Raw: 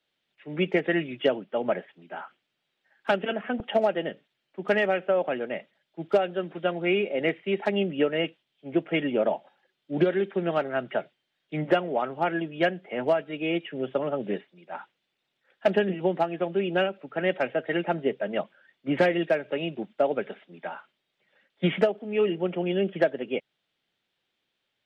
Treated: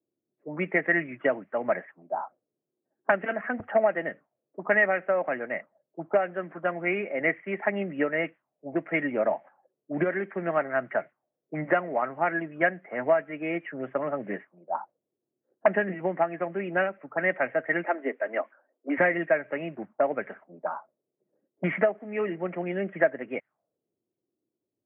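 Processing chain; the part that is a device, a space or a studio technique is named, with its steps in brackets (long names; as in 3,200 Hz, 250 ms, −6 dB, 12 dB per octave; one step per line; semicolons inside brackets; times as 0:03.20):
0:17.86–0:18.98: Butterworth high-pass 240 Hz 72 dB per octave
envelope filter bass rig (envelope-controlled low-pass 360–2,000 Hz up, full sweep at −28 dBFS; loudspeaker in its box 90–2,300 Hz, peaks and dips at 100 Hz +8 dB, 290 Hz +3 dB, 400 Hz −3 dB, 650 Hz +5 dB, 1,100 Hz +6 dB)
level −4.5 dB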